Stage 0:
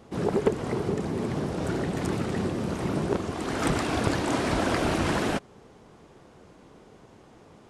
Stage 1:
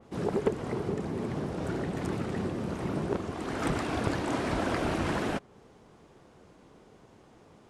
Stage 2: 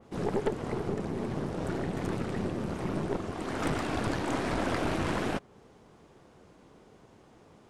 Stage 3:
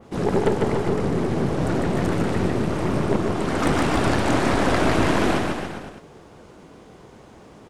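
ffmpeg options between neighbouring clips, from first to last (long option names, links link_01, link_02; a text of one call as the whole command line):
ffmpeg -i in.wav -af "adynamicequalizer=threshold=0.00562:dfrequency=3100:dqfactor=0.7:tfrequency=3100:tqfactor=0.7:attack=5:release=100:ratio=0.375:range=2:mode=cutabove:tftype=highshelf,volume=-4dB" out.wav
ffmpeg -i in.wav -af "aeval=exprs='(tanh(15.8*val(0)+0.65)-tanh(0.65))/15.8':channel_layout=same,volume=3dB" out.wav
ffmpeg -i in.wav -af "aecho=1:1:150|285|406.5|515.8|614.3:0.631|0.398|0.251|0.158|0.1,volume=8.5dB" out.wav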